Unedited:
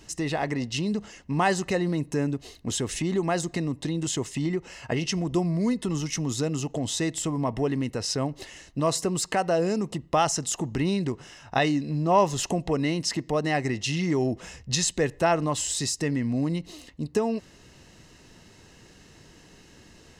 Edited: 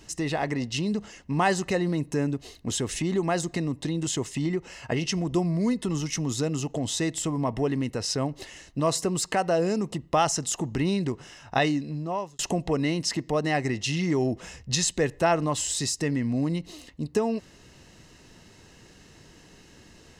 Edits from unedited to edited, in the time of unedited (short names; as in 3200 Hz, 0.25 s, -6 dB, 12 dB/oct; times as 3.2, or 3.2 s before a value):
11.64–12.39 fade out